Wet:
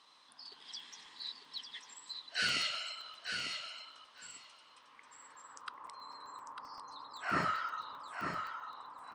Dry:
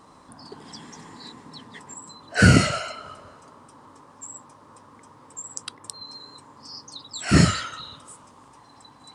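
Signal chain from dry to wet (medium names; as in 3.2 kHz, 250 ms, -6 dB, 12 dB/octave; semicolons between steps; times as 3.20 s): band-stop 7.2 kHz, Q 10; in parallel at 0 dB: compression, threshold -35 dBFS, peak gain reduction 23.5 dB; on the sum: band-pass sweep 3.5 kHz -> 1.1 kHz, 4.62–5.81 s; feedback delay 899 ms, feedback 15%, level -6 dB; crackling interface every 0.13 s, samples 64, zero, from 0.54 s; trim -3 dB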